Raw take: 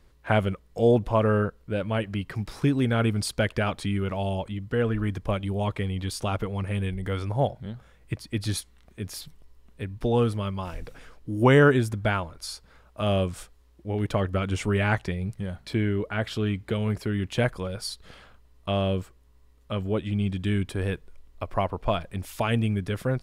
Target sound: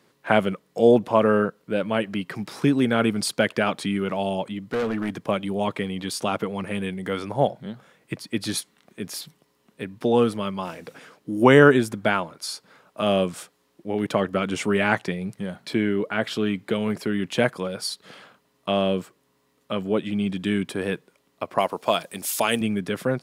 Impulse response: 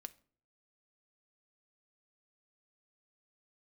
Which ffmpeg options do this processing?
-filter_complex "[0:a]highpass=f=160:w=0.5412,highpass=f=160:w=1.3066,asettb=1/sr,asplit=3[a][b][c];[a]atrim=end=4.584[d];[b]atrim=start=4.58:end=5.16,asetpts=PTS-STARTPTS,afade=t=in:d=0.004:c=qsin,afade=t=out:st=0.576:d=0.004:c=qsin,asoftclip=type=hard:threshold=-26dB[e];[c]atrim=start=5.156[f];[d][e]acrossfade=d=0.004:c1=hsin:c2=qsin[g];[g][f]acrossfade=d=0.004:c1=qsin:c2=hsin,asettb=1/sr,asplit=3[h][i][j];[h]atrim=end=21.584[k];[i]atrim=start=21.58:end=22.61,asetpts=PTS-STARTPTS,afade=t=in:d=0.004:c=qsin,afade=t=out:st=1.026:d=0.004:c=qsin,bass=f=250:g=-7,treble=f=4k:g=13[l];[j]atrim=start=22.606[m];[k][l]acrossfade=d=0.004:c1=hsin:c2=qsin[n];[n][m]acrossfade=d=0.004:c1=qsin:c2=hsin,volume=4.5dB"

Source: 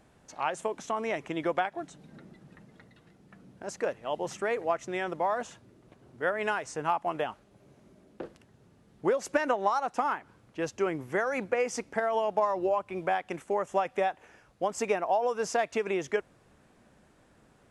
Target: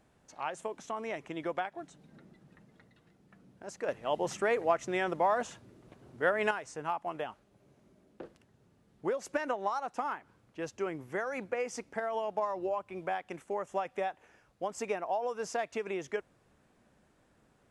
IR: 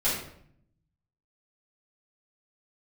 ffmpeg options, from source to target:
-filter_complex "[0:a]asettb=1/sr,asplit=3[a][b][c];[a]atrim=end=3.884[d];[b]atrim=start=3.88:end=6.51,asetpts=PTS-STARTPTS,afade=t=in:d=0.004:c=qsin,afade=t=out:st=2.626:d=0.004:c=qsin,acontrast=80[e];[c]atrim=start=6.506[f];[d][e]acrossfade=d=0.004:c1=hsin:c2=qsin[g];[g][f]acrossfade=d=0.004:c1=qsin:c2=hsin,volume=-6dB"

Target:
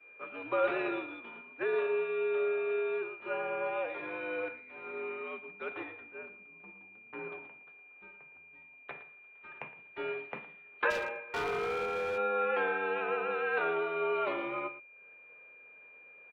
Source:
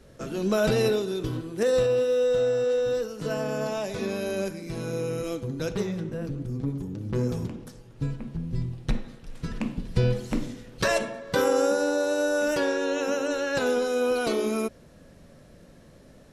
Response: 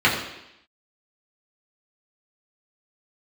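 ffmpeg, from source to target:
-filter_complex "[0:a]acompressor=mode=upward:threshold=-36dB:ratio=2.5,highpass=f=270:t=q:w=0.5412,highpass=f=270:t=q:w=1.307,lowpass=f=3.5k:t=q:w=0.5176,lowpass=f=3.5k:t=q:w=0.7071,lowpass=f=3.5k:t=q:w=1.932,afreqshift=-84,acrossover=split=520 2600:gain=0.0794 1 0.0708[a][b][c];[a][b][c]amix=inputs=3:normalize=0,asplit=2[d][e];[e]aecho=0:1:114:0.266[f];[d][f]amix=inputs=2:normalize=0,asettb=1/sr,asplit=3[g][h][i];[g]atrim=end=10.904[j];[h]atrim=start=10.9:end=12.18,asetpts=PTS-STARTPTS,afade=t=in:d=0.004:c=qsin,afade=t=out:st=1.276:d=0.004:c=qsin,volume=31.5dB,asoftclip=hard,volume=-31.5dB[k];[i]atrim=start=12.176[l];[j][k]acrossfade=d=0.004:c1=hsin:c2=qsin[m];[m][l]acrossfade=d=0.004:c1=qsin:c2=hsin,aeval=exprs='val(0)+0.00794*sin(2*PI*2400*n/s)':c=same,agate=range=-33dB:threshold=-37dB:ratio=3:detection=peak"

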